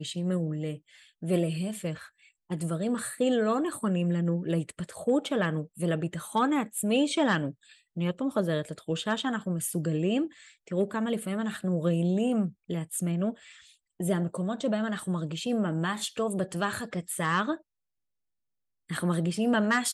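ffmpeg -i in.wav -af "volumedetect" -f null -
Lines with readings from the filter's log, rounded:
mean_volume: -29.5 dB
max_volume: -13.6 dB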